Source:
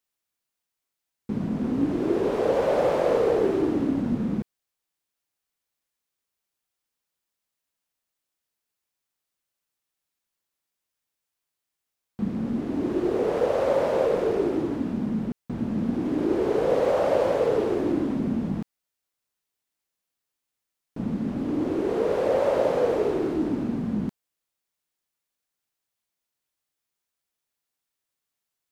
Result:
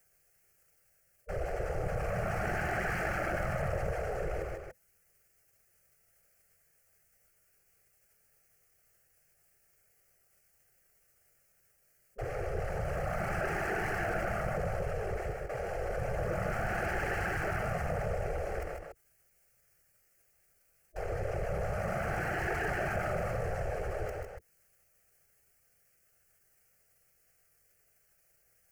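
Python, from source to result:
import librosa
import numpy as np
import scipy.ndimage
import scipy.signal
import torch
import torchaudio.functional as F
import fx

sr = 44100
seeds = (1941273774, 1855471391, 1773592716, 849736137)

y = fx.peak_eq(x, sr, hz=210.0, db=-7.0, octaves=0.6)
y = y + 10.0 ** (-8.0 / 20.0) * np.pad(y, (int(136 * sr / 1000.0), 0))[:len(y)]
y = fx.leveller(y, sr, passes=3)
y = fx.whisperise(y, sr, seeds[0])
y = 10.0 ** (-11.0 / 20.0) * np.tanh(y / 10.0 ** (-11.0 / 20.0))
y = fx.spec_gate(y, sr, threshold_db=-10, keep='weak')
y = fx.low_shelf(y, sr, hz=360.0, db=7.5)
y = fx.fixed_phaser(y, sr, hz=990.0, stages=6)
y = y + 10.0 ** (-11.5 / 20.0) * np.pad(y, (int(153 * sr / 1000.0), 0))[:len(y)]
y = fx.env_flatten(y, sr, amount_pct=50)
y = y * librosa.db_to_amplitude(-8.5)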